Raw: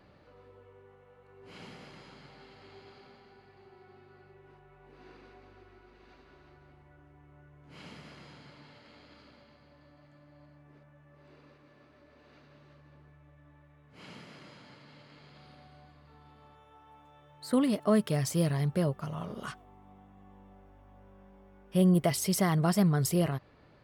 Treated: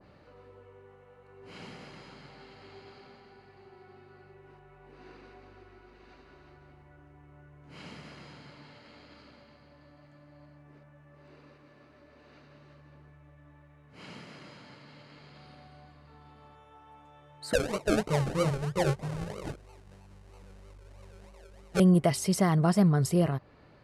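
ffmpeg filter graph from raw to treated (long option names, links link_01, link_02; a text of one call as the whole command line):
ffmpeg -i in.wav -filter_complex "[0:a]asettb=1/sr,asplit=3[link_01][link_02][link_03];[link_01]atrim=end=17.534[link_04];[link_02]atrim=start=17.53:end=21.8,asetpts=PTS-STARTPTS,afade=type=in:duration=0.004:curve=qsin,afade=type=out:start_time=4.266:duration=0.004:curve=qsin,flanger=delay=18:depth=3.4:speed=1.8,aecho=1:1:2:0.96,atrim=end_sample=188307,acrusher=samples=36:mix=1:aa=0.000001:lfo=1:lforange=21.6:lforate=3.1[link_05];[link_03]atrim=start=21.796[link_06];[link_04][link_05]acrossfade=duration=0.004:curve1=hsin:curve2=qsin[link_07];[link_07][link_06]acrossfade=duration=0.004:curve1=qsin:curve2=hsin,lowpass=frequency=11000:width=0.5412,lowpass=frequency=11000:width=1.3066,bandreject=frequency=3400:width=19,adynamicequalizer=threshold=0.00447:dfrequency=1500:dqfactor=0.7:tfrequency=1500:tqfactor=0.7:attack=5:release=100:ratio=0.375:range=2.5:mode=cutabove:tftype=highshelf,volume=2.5dB" out.wav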